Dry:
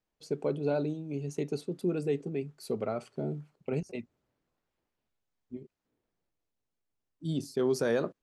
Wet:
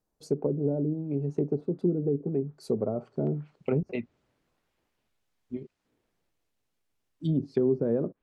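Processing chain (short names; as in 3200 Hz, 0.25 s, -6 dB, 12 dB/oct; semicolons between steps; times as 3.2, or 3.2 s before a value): treble ducked by the level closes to 370 Hz, closed at -27 dBFS; bell 2600 Hz -12 dB 1.7 oct, from 3.27 s +3 dB; gain +6 dB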